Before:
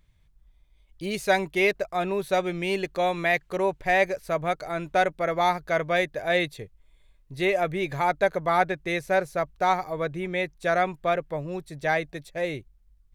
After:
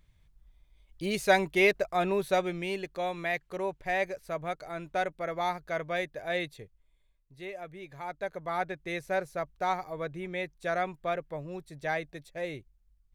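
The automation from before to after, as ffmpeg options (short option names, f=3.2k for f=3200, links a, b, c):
-af "volume=9dB,afade=t=out:st=2.15:d=0.64:silence=0.446684,afade=t=out:st=6.62:d=0.75:silence=0.354813,afade=t=in:st=7.92:d=1.07:silence=0.316228"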